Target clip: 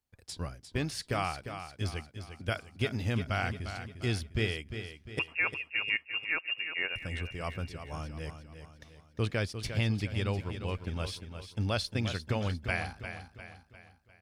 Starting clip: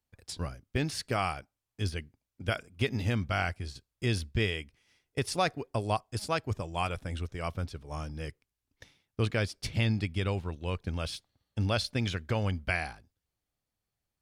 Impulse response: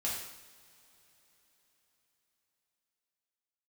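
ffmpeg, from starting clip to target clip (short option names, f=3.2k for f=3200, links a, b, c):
-filter_complex "[0:a]asettb=1/sr,asplit=3[a][b][c];[a]atrim=end=5.194[d];[b]atrim=start=5.19:end=6.96,asetpts=PTS-STARTPTS,afade=t=in:d=0.004:c=qsin,afade=t=out:st=1.766:d=0.004:c=qsin,lowpass=f=2.5k:t=q:w=0.5098,lowpass=f=2.5k:t=q:w=0.6013,lowpass=f=2.5k:t=q:w=0.9,lowpass=f=2.5k:t=q:w=2.563,afreqshift=-2900[e];[c]atrim=start=6.956[f];[d][e]acrossfade=d=0.004:c1=hsin:c2=qsin[g];[g][f]acrossfade=d=0.004:c1=qsin:c2=hsin,aecho=1:1:351|702|1053|1404|1755:0.335|0.154|0.0709|0.0326|0.015,volume=-2dB"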